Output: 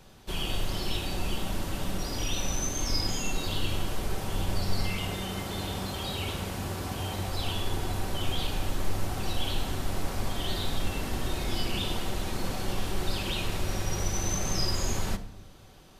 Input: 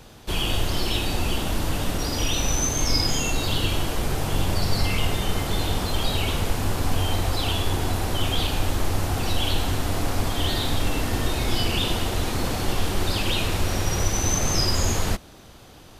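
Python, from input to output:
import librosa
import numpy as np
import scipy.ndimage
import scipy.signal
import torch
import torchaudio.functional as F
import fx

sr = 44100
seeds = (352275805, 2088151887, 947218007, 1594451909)

y = fx.highpass(x, sr, hz=64.0, slope=12, at=(4.83, 7.32))
y = fx.room_shoebox(y, sr, seeds[0], volume_m3=2400.0, walls='furnished', distance_m=1.1)
y = y * librosa.db_to_amplitude(-8.0)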